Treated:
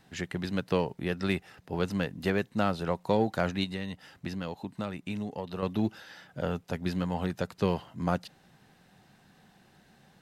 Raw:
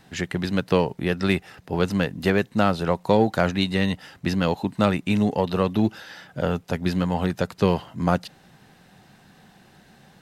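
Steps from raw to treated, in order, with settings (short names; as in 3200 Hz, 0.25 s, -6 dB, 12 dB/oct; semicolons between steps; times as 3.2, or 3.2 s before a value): 3.64–5.63 compressor 2.5:1, threshold -27 dBFS, peak gain reduction 9 dB; gain -7.5 dB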